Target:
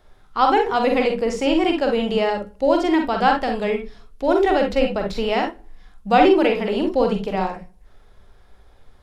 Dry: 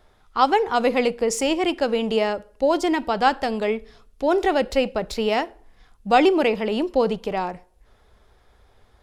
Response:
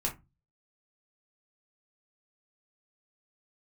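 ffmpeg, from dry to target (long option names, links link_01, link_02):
-filter_complex "[0:a]acrossover=split=4800[link_01][link_02];[link_02]acompressor=threshold=-47dB:ratio=4:attack=1:release=60[link_03];[link_01][link_03]amix=inputs=2:normalize=0,asplit=2[link_04][link_05];[1:a]atrim=start_sample=2205,asetrate=66150,aresample=44100,adelay=43[link_06];[link_05][link_06]afir=irnorm=-1:irlink=0,volume=-4dB[link_07];[link_04][link_07]amix=inputs=2:normalize=0"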